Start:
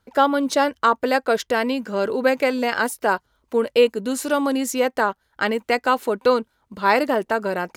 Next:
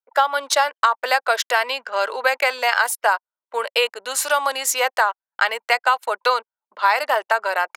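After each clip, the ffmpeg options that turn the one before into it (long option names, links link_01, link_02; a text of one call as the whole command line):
ffmpeg -i in.wav -af "anlmdn=1.58,highpass=frequency=710:width=0.5412,highpass=frequency=710:width=1.3066,acompressor=threshold=-21dB:ratio=6,volume=8dB" out.wav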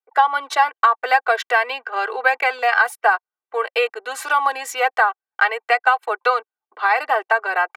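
ffmpeg -i in.wav -filter_complex "[0:a]acrossover=split=230 2800:gain=0.178 1 0.2[link_01][link_02][link_03];[link_01][link_02][link_03]amix=inputs=3:normalize=0,aecho=1:1:2.6:0.79" out.wav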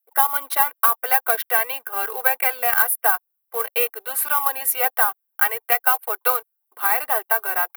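ffmpeg -i in.wav -filter_complex "[0:a]asplit=2[link_01][link_02];[link_02]acrusher=bits=2:mode=log:mix=0:aa=0.000001,volume=-5dB[link_03];[link_01][link_03]amix=inputs=2:normalize=0,aexciter=amount=13.9:drive=8.1:freq=10000,volume=-9.5dB" out.wav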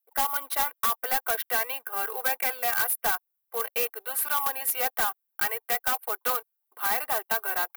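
ffmpeg -i in.wav -af "volume=16dB,asoftclip=hard,volume=-16dB,volume=-4.5dB" out.wav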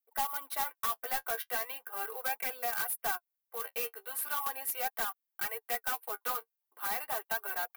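ffmpeg -i in.wav -af "flanger=delay=4.2:depth=8.9:regen=28:speed=0.39:shape=sinusoidal,volume=-4dB" out.wav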